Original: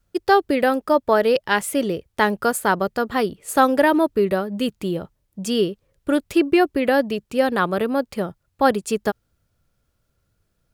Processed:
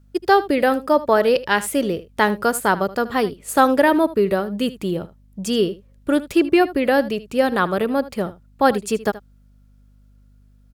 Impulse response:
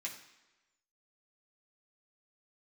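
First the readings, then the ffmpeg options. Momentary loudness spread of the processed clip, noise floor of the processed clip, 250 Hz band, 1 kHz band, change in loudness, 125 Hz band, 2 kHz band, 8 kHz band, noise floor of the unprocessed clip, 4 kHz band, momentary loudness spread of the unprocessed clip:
10 LU, −52 dBFS, +1.0 dB, +1.0 dB, +1.0 dB, +1.0 dB, +1.0 dB, +1.0 dB, −71 dBFS, +1.0 dB, 10 LU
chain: -filter_complex "[0:a]aeval=exprs='val(0)+0.00251*(sin(2*PI*50*n/s)+sin(2*PI*2*50*n/s)/2+sin(2*PI*3*50*n/s)/3+sin(2*PI*4*50*n/s)/4+sin(2*PI*5*50*n/s)/5)':channel_layout=same,asplit=2[link_01][link_02];[link_02]aecho=0:1:77:0.141[link_03];[link_01][link_03]amix=inputs=2:normalize=0,volume=1dB"

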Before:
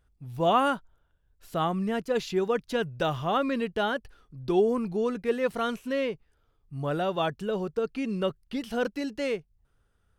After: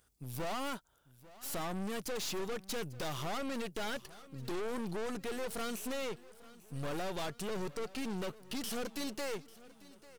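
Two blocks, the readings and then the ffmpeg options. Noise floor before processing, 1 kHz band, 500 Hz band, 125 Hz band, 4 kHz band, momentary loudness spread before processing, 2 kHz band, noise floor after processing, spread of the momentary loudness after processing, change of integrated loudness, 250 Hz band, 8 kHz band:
−70 dBFS, −12.5 dB, −12.5 dB, −8.5 dB, −5.0 dB, 11 LU, −8.5 dB, −64 dBFS, 9 LU, −11.0 dB, −10.5 dB, can't be measured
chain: -filter_complex "[0:a]highpass=frequency=190:poles=1,bass=frequency=250:gain=-1,treble=frequency=4000:gain=13,acompressor=threshold=-31dB:ratio=3,aeval=exprs='(tanh(126*val(0)+0.7)-tanh(0.7))/126':channel_layout=same,asplit=2[link_01][link_02];[link_02]aecho=0:1:845|1690|2535|3380:0.106|0.053|0.0265|0.0132[link_03];[link_01][link_03]amix=inputs=2:normalize=0,volume=5.5dB"

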